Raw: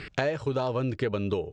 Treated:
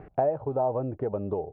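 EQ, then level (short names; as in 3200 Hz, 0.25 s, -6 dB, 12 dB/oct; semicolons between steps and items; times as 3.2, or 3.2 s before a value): synth low-pass 750 Hz, resonance Q 4.6; air absorption 180 m; -4.0 dB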